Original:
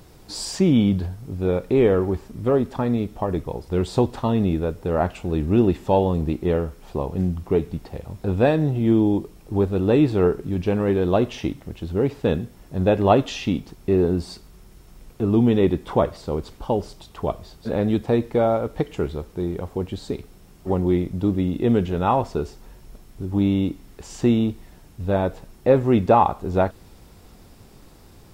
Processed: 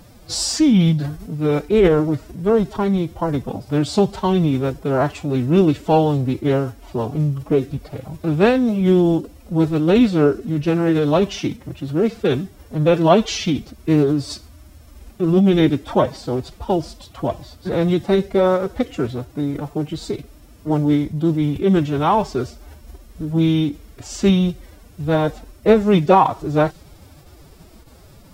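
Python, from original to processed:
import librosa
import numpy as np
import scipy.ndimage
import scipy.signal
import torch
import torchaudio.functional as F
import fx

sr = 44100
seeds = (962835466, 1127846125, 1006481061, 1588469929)

y = fx.dynamic_eq(x, sr, hz=5400.0, q=0.88, threshold_db=-47.0, ratio=4.0, max_db=7)
y = fx.pitch_keep_formants(y, sr, semitones=8.5)
y = F.gain(torch.from_numpy(y), 3.5).numpy()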